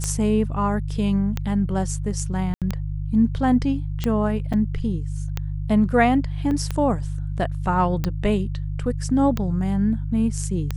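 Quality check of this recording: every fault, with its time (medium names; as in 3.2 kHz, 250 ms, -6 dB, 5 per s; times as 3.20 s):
hum 50 Hz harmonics 3 -27 dBFS
tick 45 rpm -11 dBFS
2.54–2.62 s: dropout 77 ms
4.53–4.54 s: dropout 6 ms
6.51 s: dropout 2.4 ms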